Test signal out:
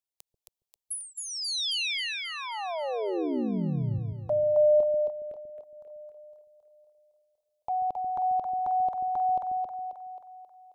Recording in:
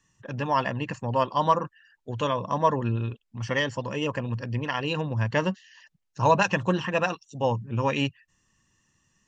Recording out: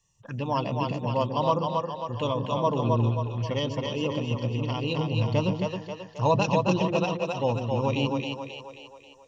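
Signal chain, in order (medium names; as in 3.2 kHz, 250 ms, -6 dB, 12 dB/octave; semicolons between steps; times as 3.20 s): touch-sensitive phaser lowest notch 260 Hz, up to 1.7 kHz, full sweep at -27.5 dBFS; two-band feedback delay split 410 Hz, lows 138 ms, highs 268 ms, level -3 dB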